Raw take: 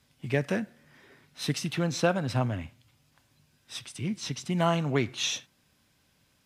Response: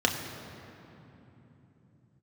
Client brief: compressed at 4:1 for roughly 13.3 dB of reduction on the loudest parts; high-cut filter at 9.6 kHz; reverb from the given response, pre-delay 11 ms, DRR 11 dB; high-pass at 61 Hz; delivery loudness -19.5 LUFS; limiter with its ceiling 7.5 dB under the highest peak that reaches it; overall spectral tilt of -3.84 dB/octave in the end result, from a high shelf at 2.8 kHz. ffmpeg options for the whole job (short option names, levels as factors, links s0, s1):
-filter_complex "[0:a]highpass=61,lowpass=9600,highshelf=f=2800:g=7.5,acompressor=threshold=0.0178:ratio=4,alimiter=level_in=2.11:limit=0.0631:level=0:latency=1,volume=0.473,asplit=2[s0][s1];[1:a]atrim=start_sample=2205,adelay=11[s2];[s1][s2]afir=irnorm=-1:irlink=0,volume=0.0668[s3];[s0][s3]amix=inputs=2:normalize=0,volume=10.6"